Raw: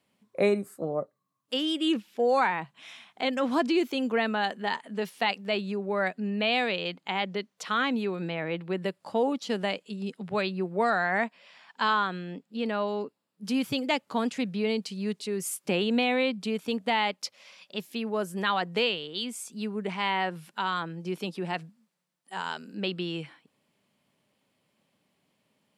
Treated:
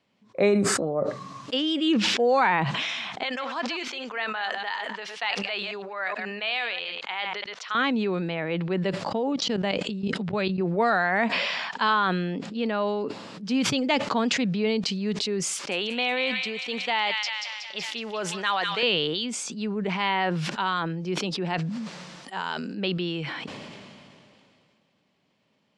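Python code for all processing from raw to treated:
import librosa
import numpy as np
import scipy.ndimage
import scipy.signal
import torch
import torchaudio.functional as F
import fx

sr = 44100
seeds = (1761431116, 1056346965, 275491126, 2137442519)

y = fx.chain(x, sr, fx.reverse_delay(ms=108, wet_db=-12),
    fx.highpass(hz=1200.0, slope=12),
    fx.tilt_eq(slope=-2.0), at=(3.23, 7.75))
y = fx.chain(y, sr, fx.lowpass(hz=11000.0, slope=12),
    fx.low_shelf(hz=320.0, db=5.5),
    fx.level_steps(step_db=14), at=(9.04, 10.61))
y = fx.chain(y, sr, fx.highpass(hz=830.0, slope=6),
    fx.echo_wet_highpass(ms=185, feedback_pct=55, hz=1600.0, wet_db=-6.5), at=(15.53, 18.83))
y = scipy.signal.sosfilt(scipy.signal.butter(4, 6300.0, 'lowpass', fs=sr, output='sos'), y)
y = fx.sustainer(y, sr, db_per_s=23.0)
y = y * librosa.db_to_amplitude(2.5)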